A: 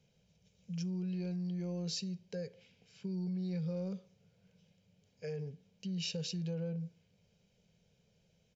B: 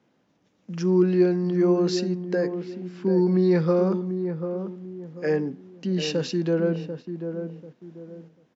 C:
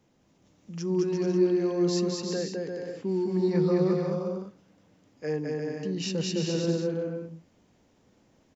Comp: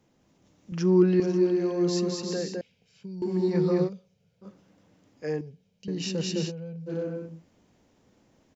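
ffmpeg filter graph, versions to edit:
-filter_complex "[0:a]asplit=4[s0][s1][s2][s3];[2:a]asplit=6[s4][s5][s6][s7][s8][s9];[s4]atrim=end=0.722[s10];[1:a]atrim=start=0.718:end=1.202[s11];[s5]atrim=start=1.198:end=2.612[s12];[s0]atrim=start=2.608:end=3.222[s13];[s6]atrim=start=3.218:end=3.9[s14];[s1]atrim=start=3.84:end=4.47[s15];[s7]atrim=start=4.41:end=5.412[s16];[s2]atrim=start=5.408:end=5.882[s17];[s8]atrim=start=5.878:end=6.52[s18];[s3]atrim=start=6.46:end=6.92[s19];[s9]atrim=start=6.86[s20];[s10][s11]acrossfade=d=0.004:c1=hsin:c2=hsin[s21];[s21][s12]acrossfade=d=0.004:c1=hsin:c2=hsin[s22];[s22][s13]acrossfade=d=0.004:c1=hsin:c2=hsin[s23];[s23][s14]acrossfade=d=0.004:c1=hsin:c2=hsin[s24];[s24][s15]acrossfade=d=0.06:c1=tri:c2=tri[s25];[s25][s16]acrossfade=d=0.06:c1=tri:c2=tri[s26];[s26][s17]acrossfade=d=0.004:c1=hsin:c2=hsin[s27];[s27][s18]acrossfade=d=0.004:c1=hsin:c2=hsin[s28];[s28][s19]acrossfade=d=0.06:c1=tri:c2=tri[s29];[s29][s20]acrossfade=d=0.06:c1=tri:c2=tri"

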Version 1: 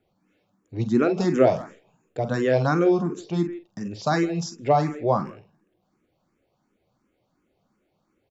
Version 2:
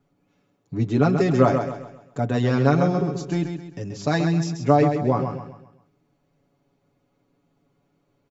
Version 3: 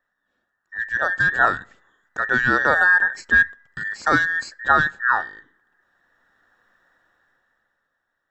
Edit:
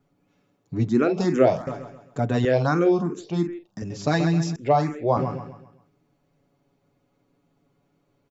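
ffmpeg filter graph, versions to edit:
-filter_complex "[0:a]asplit=3[s0][s1][s2];[1:a]asplit=4[s3][s4][s5][s6];[s3]atrim=end=0.892[s7];[s0]atrim=start=0.888:end=1.672[s8];[s4]atrim=start=1.668:end=2.452[s9];[s1]atrim=start=2.448:end=3.822[s10];[s5]atrim=start=3.818:end=4.562[s11];[s2]atrim=start=4.558:end=5.172[s12];[s6]atrim=start=5.168[s13];[s7][s8]acrossfade=d=0.004:c1=hsin:c2=hsin[s14];[s14][s9]acrossfade=d=0.004:c1=hsin:c2=hsin[s15];[s15][s10]acrossfade=d=0.004:c1=hsin:c2=hsin[s16];[s16][s11]acrossfade=d=0.004:c1=hsin:c2=hsin[s17];[s17][s12]acrossfade=d=0.004:c1=hsin:c2=hsin[s18];[s18][s13]acrossfade=d=0.004:c1=hsin:c2=hsin"

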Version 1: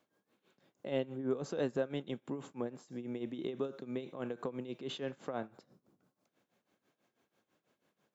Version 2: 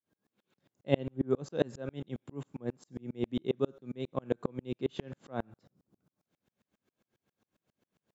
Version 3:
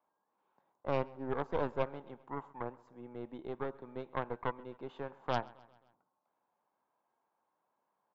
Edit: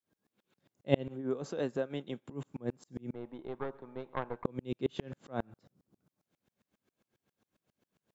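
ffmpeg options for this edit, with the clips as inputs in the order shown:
-filter_complex "[1:a]asplit=3[s0][s1][s2];[s0]atrim=end=1.16[s3];[0:a]atrim=start=1:end=2.34[s4];[s1]atrim=start=2.18:end=3.142[s5];[2:a]atrim=start=3.138:end=4.452[s6];[s2]atrim=start=4.448[s7];[s3][s4]acrossfade=d=0.16:c1=tri:c2=tri[s8];[s8][s5]acrossfade=d=0.16:c1=tri:c2=tri[s9];[s9][s6]acrossfade=d=0.004:c1=hsin:c2=hsin[s10];[s10][s7]acrossfade=d=0.004:c1=hsin:c2=hsin"

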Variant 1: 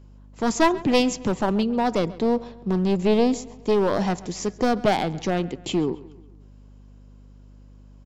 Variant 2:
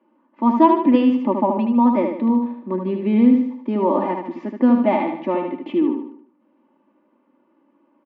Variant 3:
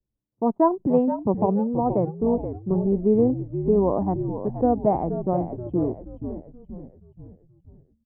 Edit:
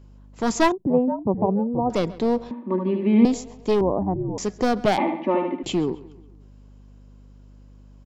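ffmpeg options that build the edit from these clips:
-filter_complex "[2:a]asplit=2[s0][s1];[1:a]asplit=2[s2][s3];[0:a]asplit=5[s4][s5][s6][s7][s8];[s4]atrim=end=0.722[s9];[s0]atrim=start=0.718:end=1.902[s10];[s5]atrim=start=1.898:end=2.512[s11];[s2]atrim=start=2.508:end=3.252[s12];[s6]atrim=start=3.248:end=3.812[s13];[s1]atrim=start=3.808:end=4.382[s14];[s7]atrim=start=4.378:end=4.982[s15];[s3]atrim=start=4.978:end=5.632[s16];[s8]atrim=start=5.628[s17];[s9][s10]acrossfade=d=0.004:c1=hsin:c2=hsin[s18];[s18][s11]acrossfade=d=0.004:c1=hsin:c2=hsin[s19];[s19][s12]acrossfade=d=0.004:c1=hsin:c2=hsin[s20];[s20][s13]acrossfade=d=0.004:c1=hsin:c2=hsin[s21];[s21][s14]acrossfade=d=0.004:c1=hsin:c2=hsin[s22];[s22][s15]acrossfade=d=0.004:c1=hsin:c2=hsin[s23];[s23][s16]acrossfade=d=0.004:c1=hsin:c2=hsin[s24];[s24][s17]acrossfade=d=0.004:c1=hsin:c2=hsin"

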